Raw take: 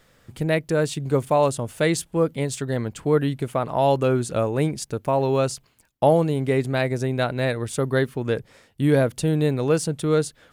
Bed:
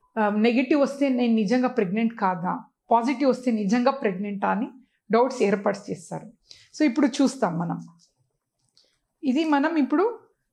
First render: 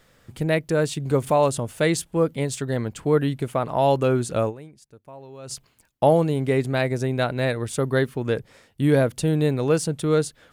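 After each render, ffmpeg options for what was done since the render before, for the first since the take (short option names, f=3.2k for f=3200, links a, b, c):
-filter_complex "[0:a]asplit=3[a][b][c];[a]afade=t=out:st=1.08:d=0.02[d];[b]acompressor=mode=upward:threshold=-21dB:ratio=2.5:attack=3.2:release=140:knee=2.83:detection=peak,afade=t=in:st=1.08:d=0.02,afade=t=out:st=1.64:d=0.02[e];[c]afade=t=in:st=1.64:d=0.02[f];[d][e][f]amix=inputs=3:normalize=0,asplit=3[g][h][i];[g]atrim=end=4.79,asetpts=PTS-STARTPTS,afade=t=out:st=4.49:d=0.3:c=exp:silence=0.0891251[j];[h]atrim=start=4.79:end=5.22,asetpts=PTS-STARTPTS,volume=-21dB[k];[i]atrim=start=5.22,asetpts=PTS-STARTPTS,afade=t=in:d=0.3:c=exp:silence=0.0891251[l];[j][k][l]concat=n=3:v=0:a=1"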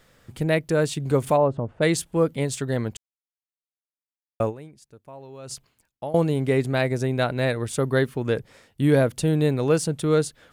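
-filter_complex "[0:a]asplit=3[a][b][c];[a]afade=t=out:st=1.36:d=0.02[d];[b]lowpass=1k,afade=t=in:st=1.36:d=0.02,afade=t=out:st=1.81:d=0.02[e];[c]afade=t=in:st=1.81:d=0.02[f];[d][e][f]amix=inputs=3:normalize=0,asplit=4[g][h][i][j];[g]atrim=end=2.97,asetpts=PTS-STARTPTS,afade=t=out:st=2.966:d=0.004:c=hsin[k];[h]atrim=start=2.97:end=4.4,asetpts=PTS-STARTPTS,volume=0[l];[i]atrim=start=4.4:end=6.14,asetpts=PTS-STARTPTS,afade=t=in:d=0.004:c=hsin,afade=t=out:st=0.97:d=0.77:silence=0.1[m];[j]atrim=start=6.14,asetpts=PTS-STARTPTS,afade=t=in:d=0.004:c=hsin:silence=0.1[n];[k][l][m][n]concat=n=4:v=0:a=1"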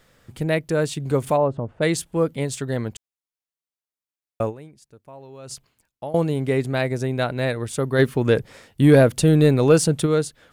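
-filter_complex "[0:a]asplit=3[a][b][c];[a]afade=t=out:st=7.98:d=0.02[d];[b]acontrast=61,afade=t=in:st=7.98:d=0.02,afade=t=out:st=10.05:d=0.02[e];[c]afade=t=in:st=10.05:d=0.02[f];[d][e][f]amix=inputs=3:normalize=0"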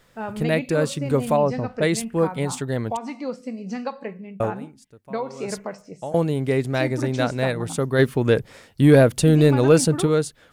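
-filter_complex "[1:a]volume=-8.5dB[a];[0:a][a]amix=inputs=2:normalize=0"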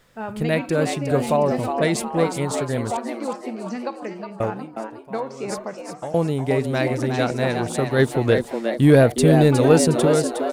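-filter_complex "[0:a]asplit=6[a][b][c][d][e][f];[b]adelay=362,afreqshift=110,volume=-7dB[g];[c]adelay=724,afreqshift=220,volume=-14.1dB[h];[d]adelay=1086,afreqshift=330,volume=-21.3dB[i];[e]adelay=1448,afreqshift=440,volume=-28.4dB[j];[f]adelay=1810,afreqshift=550,volume=-35.5dB[k];[a][g][h][i][j][k]amix=inputs=6:normalize=0"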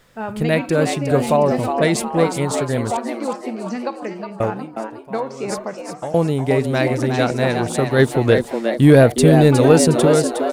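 -af "volume=3.5dB,alimiter=limit=-1dB:level=0:latency=1"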